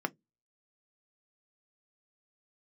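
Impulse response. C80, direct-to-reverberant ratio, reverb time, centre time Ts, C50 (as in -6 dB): 41.5 dB, 8.0 dB, 0.15 s, 2 ms, 31.5 dB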